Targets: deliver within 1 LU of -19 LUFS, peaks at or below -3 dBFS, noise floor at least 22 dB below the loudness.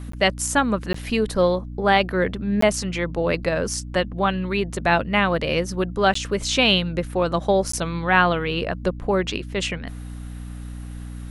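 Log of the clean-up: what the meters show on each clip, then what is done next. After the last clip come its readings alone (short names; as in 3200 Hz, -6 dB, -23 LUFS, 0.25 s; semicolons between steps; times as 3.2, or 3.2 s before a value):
dropouts 5; longest dropout 14 ms; hum 60 Hz; harmonics up to 300 Hz; hum level -32 dBFS; loudness -22.0 LUFS; peak -3.0 dBFS; loudness target -19.0 LUFS
-> interpolate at 0.12/0.93/2.61/6.14/7.72, 14 ms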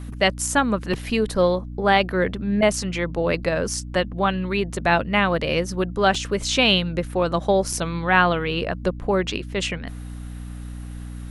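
dropouts 0; hum 60 Hz; harmonics up to 300 Hz; hum level -32 dBFS
-> notches 60/120/180/240/300 Hz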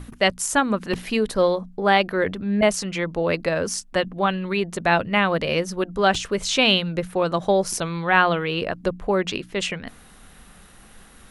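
hum none; loudness -22.0 LUFS; peak -3.0 dBFS; loudness target -19.0 LUFS
-> gain +3 dB; limiter -3 dBFS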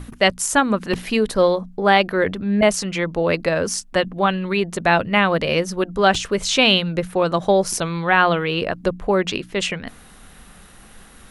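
loudness -19.5 LUFS; peak -3.0 dBFS; noise floor -46 dBFS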